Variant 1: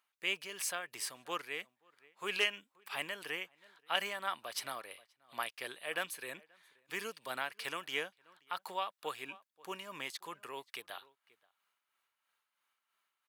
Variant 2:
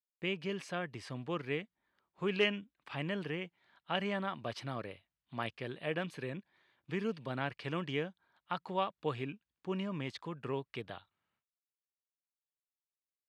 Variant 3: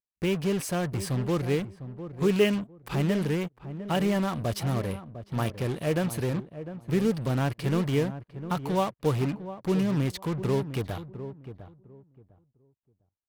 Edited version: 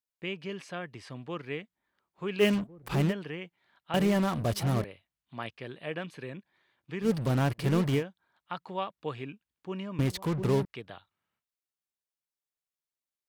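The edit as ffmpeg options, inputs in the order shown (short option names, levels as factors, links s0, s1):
-filter_complex "[2:a]asplit=4[s0][s1][s2][s3];[1:a]asplit=5[s4][s5][s6][s7][s8];[s4]atrim=end=2.44[s9];[s0]atrim=start=2.38:end=3.14[s10];[s5]atrim=start=3.08:end=3.942[s11];[s1]atrim=start=3.938:end=4.842[s12];[s6]atrim=start=4.838:end=7.1[s13];[s2]atrim=start=7:end=8.04[s14];[s7]atrim=start=7.94:end=9.992[s15];[s3]atrim=start=9.988:end=10.652[s16];[s8]atrim=start=10.648[s17];[s9][s10]acrossfade=d=0.06:c1=tri:c2=tri[s18];[s18][s11]acrossfade=d=0.06:c1=tri:c2=tri[s19];[s19][s12]acrossfade=d=0.004:c1=hsin:c2=hsin[s20];[s20][s13]acrossfade=d=0.004:c1=hsin:c2=hsin[s21];[s21][s14]acrossfade=d=0.1:c1=tri:c2=tri[s22];[s22][s15]acrossfade=d=0.1:c1=tri:c2=tri[s23];[s23][s16]acrossfade=d=0.004:c1=hsin:c2=hsin[s24];[s24][s17]acrossfade=d=0.004:c1=hsin:c2=hsin"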